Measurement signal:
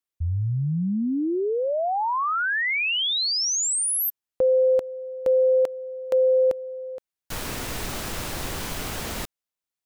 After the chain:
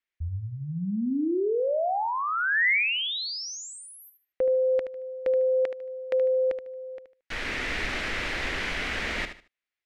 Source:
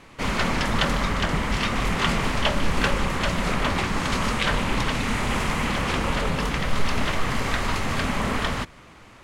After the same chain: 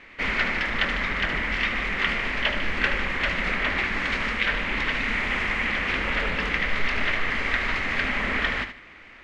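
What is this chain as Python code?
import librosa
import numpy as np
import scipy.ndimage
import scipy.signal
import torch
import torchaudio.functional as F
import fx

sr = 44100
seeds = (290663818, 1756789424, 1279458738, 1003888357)

p1 = fx.graphic_eq(x, sr, hz=(125, 1000, 2000), db=(-11, -5, 12))
p2 = fx.rider(p1, sr, range_db=4, speed_s=0.5)
p3 = scipy.signal.sosfilt(scipy.signal.butter(2, 4100.0, 'lowpass', fs=sr, output='sos'), p2)
p4 = p3 + fx.echo_feedback(p3, sr, ms=75, feedback_pct=25, wet_db=-10.0, dry=0)
y = F.gain(torch.from_numpy(p4), -4.5).numpy()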